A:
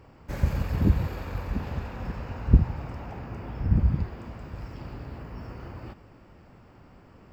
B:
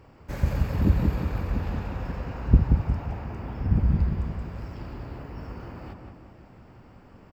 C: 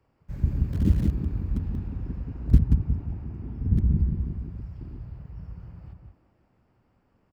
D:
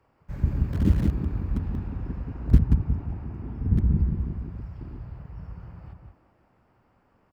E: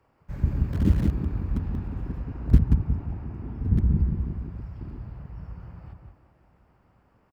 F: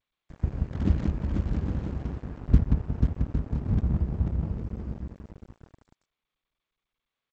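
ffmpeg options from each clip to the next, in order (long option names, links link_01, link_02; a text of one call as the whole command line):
ffmpeg -i in.wav -filter_complex "[0:a]asplit=2[link_01][link_02];[link_02]adelay=180,lowpass=frequency=1800:poles=1,volume=-4dB,asplit=2[link_03][link_04];[link_04]adelay=180,lowpass=frequency=1800:poles=1,volume=0.5,asplit=2[link_05][link_06];[link_06]adelay=180,lowpass=frequency=1800:poles=1,volume=0.5,asplit=2[link_07][link_08];[link_08]adelay=180,lowpass=frequency=1800:poles=1,volume=0.5,asplit=2[link_09][link_10];[link_10]adelay=180,lowpass=frequency=1800:poles=1,volume=0.5,asplit=2[link_11][link_12];[link_12]adelay=180,lowpass=frequency=1800:poles=1,volume=0.5[link_13];[link_01][link_03][link_05][link_07][link_09][link_11][link_13]amix=inputs=7:normalize=0" out.wav
ffmpeg -i in.wav -filter_complex "[0:a]afwtdn=0.0447,acrossover=split=210|440|1200[link_01][link_02][link_03][link_04];[link_03]aeval=exprs='(mod(168*val(0)+1,2)-1)/168':channel_layout=same[link_05];[link_01][link_02][link_05][link_04]amix=inputs=4:normalize=0" out.wav
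ffmpeg -i in.wav -af "equalizer=frequency=1100:width_type=o:width=2.6:gain=7" out.wav
ffmpeg -i in.wav -af "aecho=1:1:1113:0.0668" out.wav
ffmpeg -i in.wav -af "aecho=1:1:490|808.5|1016|1150|1238:0.631|0.398|0.251|0.158|0.1,aeval=exprs='sgn(val(0))*max(abs(val(0))-0.0251,0)':channel_layout=same,volume=-2dB" -ar 16000 -c:a g722 out.g722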